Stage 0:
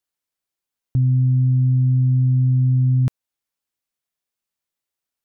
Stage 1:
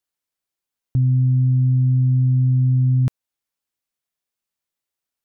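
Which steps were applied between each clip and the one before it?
no processing that can be heard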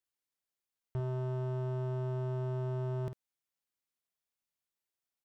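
hard clipping −25.5 dBFS, distortion −8 dB
double-tracking delay 50 ms −10 dB
level −7 dB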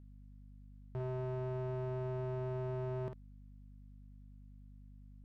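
mid-hump overdrive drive 14 dB, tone 1,300 Hz, clips at −30 dBFS
mains hum 50 Hz, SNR 13 dB
level −1 dB

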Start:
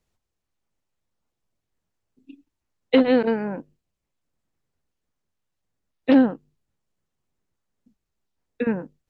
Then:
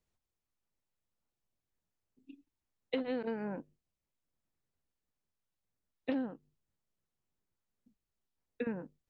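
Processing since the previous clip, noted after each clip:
downward compressor 5 to 1, threshold −24 dBFS, peak gain reduction 11.5 dB
level −8.5 dB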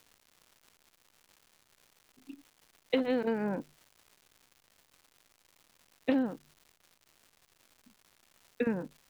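surface crackle 310 per second −54 dBFS
level +6 dB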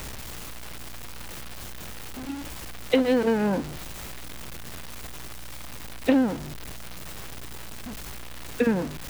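converter with a step at zero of −37.5 dBFS
mains hum 60 Hz, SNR 18 dB
level +7 dB

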